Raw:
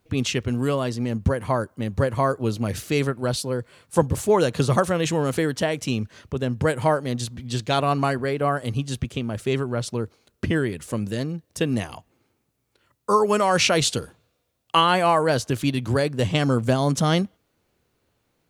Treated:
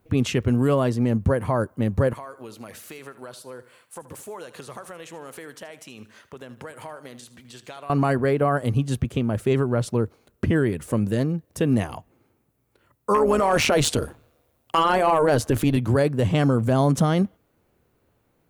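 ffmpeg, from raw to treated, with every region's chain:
ffmpeg -i in.wav -filter_complex "[0:a]asettb=1/sr,asplit=3[link_01][link_02][link_03];[link_01]atrim=end=2.134[link_04];[link_02]atrim=start=2.13:end=7.9,asetpts=PTS-STARTPTS,afade=type=in:duration=0.004:curve=qsin,afade=type=out:start_time=5.766:duration=0.004:curve=qsin,highpass=frequency=1400:poles=1,acompressor=threshold=-38dB:ratio=5:attack=3.2:release=140:knee=1:detection=peak,aecho=1:1:78|156|234:0.178|0.0676|0.0257,atrim=end_sample=254457[link_05];[link_03]atrim=start=7.896[link_06];[link_04][link_05]acrossfade=duration=0.004:curve1=hsin:curve2=qsin[link_07];[link_07][link_06]acrossfade=duration=0.004:curve1=qsin:curve2=hsin,asettb=1/sr,asplit=3[link_08][link_09][link_10];[link_08]atrim=end=13.144[link_11];[link_09]atrim=start=13.14:end=15.77,asetpts=PTS-STARTPTS,afade=type=in:duration=0.004:curve=qsin,afade=type=out:start_time=2.626:duration=0.004:curve=qsin,equalizer=frequency=170:width_type=o:width=0.21:gain=-12,tremolo=f=150:d=0.667,aeval=exprs='0.447*sin(PI/2*1.58*val(0)/0.447)':channel_layout=same[link_12];[link_10]atrim=start=15.766[link_13];[link_11][link_12]acrossfade=duration=0.004:curve1=hsin:curve2=qsin[link_14];[link_14][link_13]acrossfade=duration=0.004:curve1=qsin:curve2=hsin,equalizer=frequency=4800:width_type=o:width=2.2:gain=-10,alimiter=limit=-16dB:level=0:latency=1:release=42,volume=4.5dB" out.wav

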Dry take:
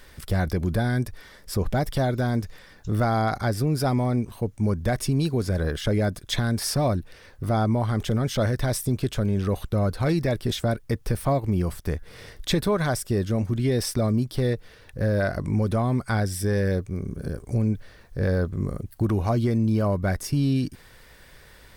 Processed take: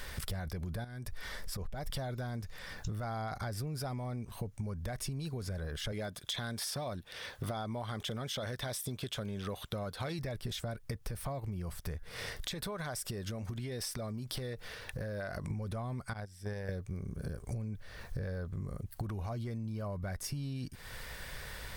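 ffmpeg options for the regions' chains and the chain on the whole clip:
ffmpeg -i in.wav -filter_complex "[0:a]asettb=1/sr,asplit=3[link_01][link_02][link_03];[link_01]atrim=end=0.844[link_04];[link_02]atrim=start=0.84:end=1.9,asetpts=PTS-STARTPTS,afade=type=in:duration=0.004:curve=qsin,afade=type=out:start_time=1.056:duration=0.004:curve=qsin,asubboost=boost=9:cutoff=61,acompressor=threshold=-37dB:ratio=5:attack=3.2:release=140:knee=1:detection=peak[link_05];[link_03]atrim=start=1.896[link_06];[link_04][link_05]acrossfade=duration=0.004:curve1=hsin:curve2=qsin[link_07];[link_07][link_06]acrossfade=duration=0.004:curve1=qsin:curve2=hsin,asettb=1/sr,asplit=3[link_08][link_09][link_10];[link_08]atrim=end=5.924[link_11];[link_09]atrim=start=5.92:end=10.19,asetpts=PTS-STARTPTS,afade=type=in:duration=0.004:curve=qsin,afade=type=out:start_time=4.266:duration=0.004:curve=qsin,highpass=frequency=240:poles=1,equalizer=frequency=3400:width_type=o:width=0.3:gain=8[link_12];[link_10]atrim=start=10.186[link_13];[link_11][link_12]acrossfade=duration=0.004:curve1=hsin:curve2=qsin[link_14];[link_14][link_13]acrossfade=duration=0.004:curve1=qsin:curve2=hsin,asettb=1/sr,asplit=3[link_15][link_16][link_17];[link_15]atrim=end=12.094[link_18];[link_16]atrim=start=12.09:end=15.51,asetpts=PTS-STARTPTS,afade=type=in:duration=0.004:curve=qsin,afade=type=out:start_time=3.416:duration=0.004:curve=qsin,lowshelf=frequency=170:gain=-7,acompressor=threshold=-37dB:ratio=4:attack=3.2:release=140:knee=1:detection=peak[link_19];[link_17]atrim=start=15.506[link_20];[link_18][link_19]acrossfade=duration=0.004:curve1=hsin:curve2=qsin[link_21];[link_21][link_20]acrossfade=duration=0.004:curve1=qsin:curve2=hsin,asettb=1/sr,asplit=3[link_22][link_23][link_24];[link_22]atrim=end=16.134[link_25];[link_23]atrim=start=16.13:end=16.69,asetpts=PTS-STARTPTS,afade=type=in:duration=0.004:curve=qsin,afade=type=out:start_time=0.556:duration=0.004:curve=qsin,acrossover=split=6800[link_26][link_27];[link_27]acompressor=threshold=-41dB:ratio=4:attack=1:release=60[link_28];[link_26][link_28]amix=inputs=2:normalize=0,agate=range=-23dB:threshold=-21dB:ratio=16:release=100:detection=peak[link_29];[link_24]atrim=start=16.686[link_30];[link_25][link_29]acrossfade=duration=0.004:curve1=hsin:curve2=qsin[link_31];[link_31][link_30]acrossfade=duration=0.004:curve1=qsin:curve2=hsin,equalizer=frequency=310:width=1.4:gain=-7,alimiter=limit=-20.5dB:level=0:latency=1:release=15,acompressor=threshold=-41dB:ratio=16,volume=6dB" out.wav

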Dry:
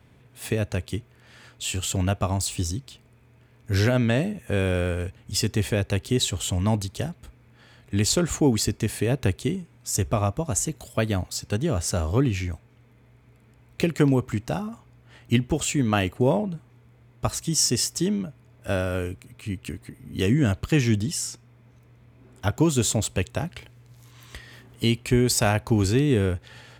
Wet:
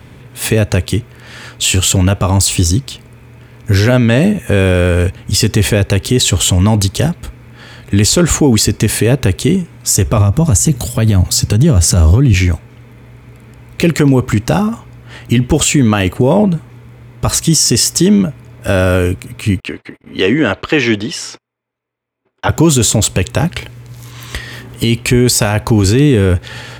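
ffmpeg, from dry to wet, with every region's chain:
ffmpeg -i in.wav -filter_complex "[0:a]asettb=1/sr,asplit=3[link_01][link_02][link_03];[link_01]atrim=end=10.174[link_04];[link_02]atrim=start=10.17:end=12.34,asetpts=PTS-STARTPTS,afade=type=in:duration=0.004:curve=qsin,afade=type=out:start_time=2.166:duration=0.004:curve=qsin,highpass=frequency=67:width=0.5412,highpass=frequency=67:width=1.3066,bass=frequency=250:gain=10,treble=frequency=4000:gain=4,acompressor=threshold=-19dB:ratio=6:attack=3.2:release=140:knee=1:detection=peak[link_05];[link_03]atrim=start=12.336[link_06];[link_04][link_05]acrossfade=duration=0.004:curve1=hsin:curve2=qsin[link_07];[link_07][link_06]acrossfade=duration=0.004:curve1=qsin:curve2=hsin,asettb=1/sr,asplit=3[link_08][link_09][link_10];[link_08]atrim=end=19.604[link_11];[link_09]atrim=start=19.6:end=22.49,asetpts=PTS-STARTPTS,afade=type=in:duration=0.004:curve=qsin,afade=type=out:start_time=2.886:duration=0.004:curve=qsin,acrossover=split=320 4300:gain=0.112 1 0.0794[link_12][link_13][link_14];[link_12][link_13][link_14]amix=inputs=3:normalize=0,agate=range=-33dB:threshold=-56dB:ratio=16:release=100:detection=peak[link_15];[link_10]atrim=start=22.486[link_16];[link_11][link_15]acrossfade=duration=0.004:curve1=hsin:curve2=qsin[link_17];[link_17][link_16]acrossfade=duration=0.004:curve1=qsin:curve2=hsin,bandreject=frequency=690:width=12,alimiter=level_in=19dB:limit=-1dB:release=50:level=0:latency=1,volume=-1dB" out.wav

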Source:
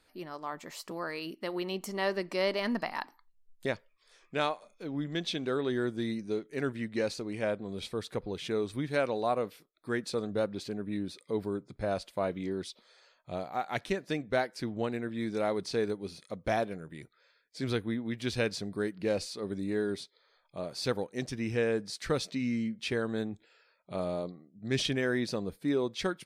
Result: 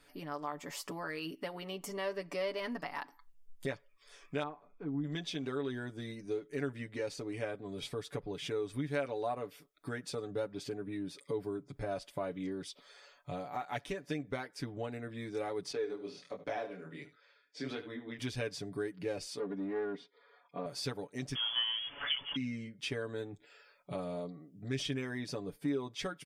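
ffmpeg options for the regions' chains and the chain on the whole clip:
ffmpeg -i in.wav -filter_complex "[0:a]asettb=1/sr,asplit=3[link_01][link_02][link_03];[link_01]atrim=end=4.434[link_04];[link_02]atrim=start=4.43:end=5.04,asetpts=PTS-STARTPTS,afade=type=in:duration=0.004:curve=qsin,afade=type=out:start_time=0.606:duration=0.004:curve=qsin,lowpass=1100,equalizer=frequency=560:width_type=o:width=0.42:gain=-14.5[link_05];[link_03]atrim=start=5.036[link_06];[link_04][link_05]acrossfade=duration=0.004:curve1=hsin:curve2=qsin[link_07];[link_07][link_06]acrossfade=duration=0.004:curve1=qsin:curve2=hsin,asettb=1/sr,asplit=3[link_08][link_09][link_10];[link_08]atrim=end=15.724[link_11];[link_09]atrim=start=15.72:end=18.19,asetpts=PTS-STARTPTS,afade=type=in:duration=0.004:curve=qsin,afade=type=out:start_time=2.466:duration=0.004:curve=qsin,acrossover=split=200 6400:gain=0.178 1 0.112[link_12][link_13][link_14];[link_12][link_13][link_14]amix=inputs=3:normalize=0,aecho=1:1:74:0.2,atrim=end_sample=108927,flanger=delay=19:depth=7.9:speed=1.4[link_15];[link_10]atrim=start=18.186[link_16];[link_11][link_15]acrossfade=duration=0.004:curve1=hsin:curve2=qsin[link_17];[link_17][link_16]acrossfade=duration=0.004:curve1=qsin:curve2=hsin,asettb=1/sr,asplit=3[link_18][link_19][link_20];[link_18]atrim=end=19.394[link_21];[link_19]atrim=start=19.39:end=20.66,asetpts=PTS-STARTPTS,afade=type=in:duration=0.004:curve=qsin,afade=type=out:start_time=1.266:duration=0.004:curve=qsin,aecho=1:1:4.2:0.91,atrim=end_sample=56007,aeval=exprs='clip(val(0),-1,0.0266)':channel_layout=same,highpass=170,lowpass=2200[link_22];[link_20]atrim=start=20.656[link_23];[link_21][link_22]acrossfade=duration=0.004:curve1=hsin:curve2=qsin[link_24];[link_24][link_23]acrossfade=duration=0.004:curve1=qsin:curve2=hsin,asettb=1/sr,asplit=3[link_25][link_26][link_27];[link_25]atrim=end=21.354[link_28];[link_26]atrim=start=21.35:end=22.36,asetpts=PTS-STARTPTS,afade=type=in:duration=0.004:curve=qsin,afade=type=out:start_time=1.006:duration=0.004:curve=qsin,aeval=exprs='val(0)+0.5*0.0237*sgn(val(0))':channel_layout=same,equalizer=frequency=620:width=3.1:gain=9.5,lowpass=frequency=3000:width_type=q:width=0.5098,lowpass=frequency=3000:width_type=q:width=0.6013,lowpass=frequency=3000:width_type=q:width=0.9,lowpass=frequency=3000:width_type=q:width=2.563,afreqshift=-3500[link_29];[link_27]atrim=start=22.356[link_30];[link_28][link_29]acrossfade=duration=0.004:curve1=hsin:curve2=qsin[link_31];[link_31][link_30]acrossfade=duration=0.004:curve1=qsin:curve2=hsin,acompressor=threshold=-44dB:ratio=2.5,bandreject=frequency=4100:width=8.8,aecho=1:1:7:0.77,volume=2.5dB" out.wav

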